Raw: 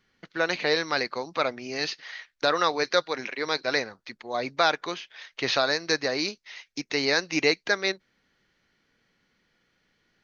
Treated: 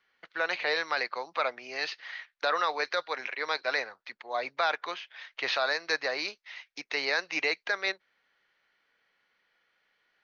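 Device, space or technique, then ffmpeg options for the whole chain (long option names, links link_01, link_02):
DJ mixer with the lows and highs turned down: -filter_complex "[0:a]acrossover=split=510 3900:gain=0.1 1 0.224[link_01][link_02][link_03];[link_01][link_02][link_03]amix=inputs=3:normalize=0,alimiter=limit=-17dB:level=0:latency=1:release=16"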